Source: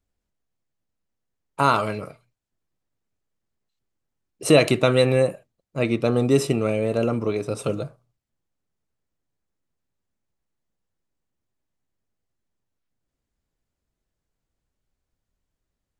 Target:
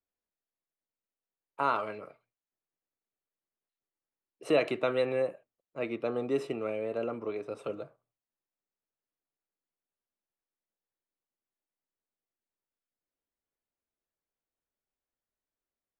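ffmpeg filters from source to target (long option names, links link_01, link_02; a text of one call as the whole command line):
ffmpeg -i in.wav -filter_complex "[0:a]acrossover=split=270 3200:gain=0.178 1 0.158[link_01][link_02][link_03];[link_01][link_02][link_03]amix=inputs=3:normalize=0,volume=-9dB" out.wav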